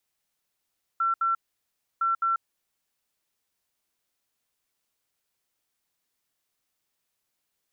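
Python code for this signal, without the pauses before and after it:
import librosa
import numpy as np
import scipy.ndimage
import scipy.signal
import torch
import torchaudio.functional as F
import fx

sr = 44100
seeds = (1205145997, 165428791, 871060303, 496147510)

y = fx.beep_pattern(sr, wave='sine', hz=1350.0, on_s=0.14, off_s=0.07, beeps=2, pause_s=0.66, groups=2, level_db=-21.5)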